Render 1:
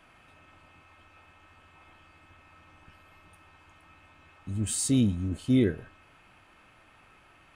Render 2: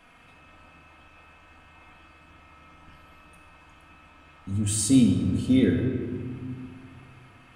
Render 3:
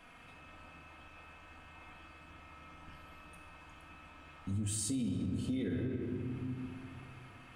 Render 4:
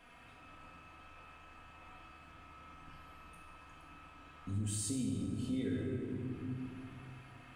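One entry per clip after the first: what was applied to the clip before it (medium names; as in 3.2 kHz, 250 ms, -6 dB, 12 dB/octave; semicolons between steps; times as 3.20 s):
simulated room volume 2700 m³, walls mixed, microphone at 1.8 m; trim +1.5 dB
peak limiter -19 dBFS, peak gain reduction 10 dB; compression 2.5:1, threshold -34 dBFS, peak gain reduction 8 dB; trim -2 dB
two-slope reverb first 0.82 s, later 2.9 s, DRR 2 dB; trim -3.5 dB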